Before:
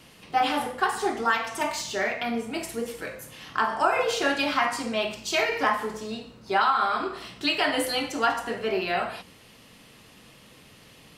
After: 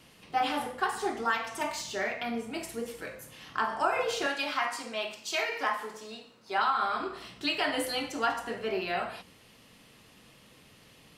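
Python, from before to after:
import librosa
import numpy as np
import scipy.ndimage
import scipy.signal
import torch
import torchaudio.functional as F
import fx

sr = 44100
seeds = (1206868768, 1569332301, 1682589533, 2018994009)

y = fx.highpass(x, sr, hz=550.0, slope=6, at=(4.26, 6.58))
y = F.gain(torch.from_numpy(y), -5.0).numpy()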